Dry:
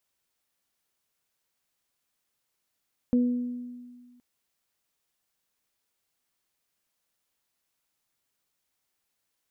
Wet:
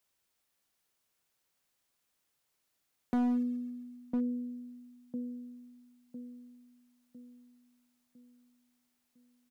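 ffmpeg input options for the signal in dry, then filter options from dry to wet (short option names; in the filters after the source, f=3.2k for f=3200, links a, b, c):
-f lavfi -i "aevalsrc='0.126*pow(10,-3*t/1.73)*sin(2*PI*245*t)+0.0335*pow(10,-3*t/0.86)*sin(2*PI*490*t)':d=1.07:s=44100"
-filter_complex "[0:a]acrossover=split=130[a][b];[a]acrusher=bits=3:mode=log:mix=0:aa=0.000001[c];[b]asplit=2[d][e];[e]adelay=1004,lowpass=f=870:p=1,volume=-6dB,asplit=2[f][g];[g]adelay=1004,lowpass=f=870:p=1,volume=0.46,asplit=2[h][i];[i]adelay=1004,lowpass=f=870:p=1,volume=0.46,asplit=2[j][k];[k]adelay=1004,lowpass=f=870:p=1,volume=0.46,asplit=2[l][m];[m]adelay=1004,lowpass=f=870:p=1,volume=0.46,asplit=2[n][o];[o]adelay=1004,lowpass=f=870:p=1,volume=0.46[p];[d][f][h][j][l][n][p]amix=inputs=7:normalize=0[q];[c][q]amix=inputs=2:normalize=0,asoftclip=type=hard:threshold=-26.5dB"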